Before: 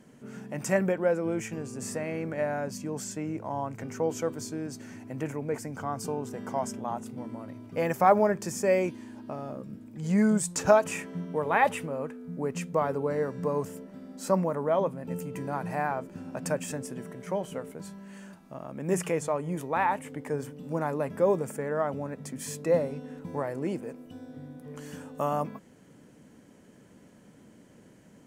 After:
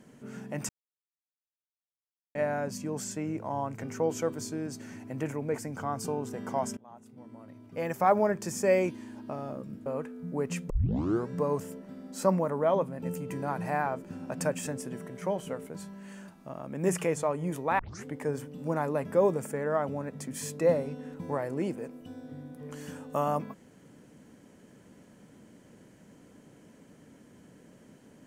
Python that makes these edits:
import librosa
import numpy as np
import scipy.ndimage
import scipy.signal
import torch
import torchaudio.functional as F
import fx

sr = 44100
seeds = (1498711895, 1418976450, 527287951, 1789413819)

y = fx.edit(x, sr, fx.silence(start_s=0.69, length_s=1.66),
    fx.fade_in_from(start_s=6.77, length_s=1.94, floor_db=-23.5),
    fx.cut(start_s=9.86, length_s=2.05),
    fx.tape_start(start_s=12.75, length_s=0.59),
    fx.tape_start(start_s=19.84, length_s=0.26), tone=tone)